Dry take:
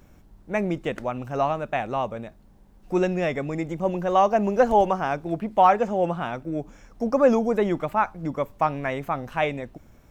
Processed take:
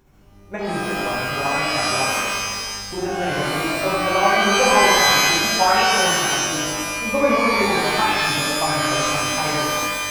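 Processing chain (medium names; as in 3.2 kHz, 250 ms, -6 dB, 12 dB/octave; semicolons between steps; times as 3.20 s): tremolo 13 Hz, depth 89%; pitch-shifted reverb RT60 1.6 s, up +12 st, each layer -2 dB, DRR -7 dB; trim -3 dB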